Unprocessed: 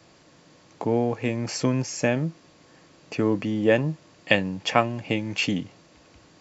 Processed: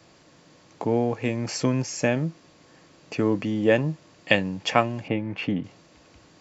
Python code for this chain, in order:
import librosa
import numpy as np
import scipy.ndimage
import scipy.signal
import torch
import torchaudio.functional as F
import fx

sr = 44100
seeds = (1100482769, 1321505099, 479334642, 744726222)

y = fx.lowpass(x, sr, hz=1900.0, slope=12, at=(5.08, 5.64))